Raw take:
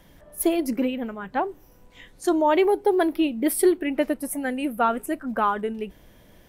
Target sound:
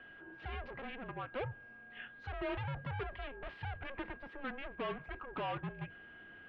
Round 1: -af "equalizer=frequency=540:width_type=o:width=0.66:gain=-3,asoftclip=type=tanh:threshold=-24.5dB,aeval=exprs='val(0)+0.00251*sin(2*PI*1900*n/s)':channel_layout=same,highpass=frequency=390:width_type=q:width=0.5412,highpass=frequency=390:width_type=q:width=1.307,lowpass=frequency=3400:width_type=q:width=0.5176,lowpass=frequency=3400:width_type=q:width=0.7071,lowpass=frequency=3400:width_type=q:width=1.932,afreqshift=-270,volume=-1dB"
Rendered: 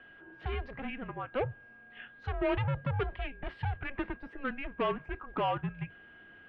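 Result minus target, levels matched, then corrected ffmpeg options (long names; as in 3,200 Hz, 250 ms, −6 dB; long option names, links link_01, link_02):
soft clipping: distortion −5 dB
-af "equalizer=frequency=540:width_type=o:width=0.66:gain=-3,asoftclip=type=tanh:threshold=-34.5dB,aeval=exprs='val(0)+0.00251*sin(2*PI*1900*n/s)':channel_layout=same,highpass=frequency=390:width_type=q:width=0.5412,highpass=frequency=390:width_type=q:width=1.307,lowpass=frequency=3400:width_type=q:width=0.5176,lowpass=frequency=3400:width_type=q:width=0.7071,lowpass=frequency=3400:width_type=q:width=1.932,afreqshift=-270,volume=-1dB"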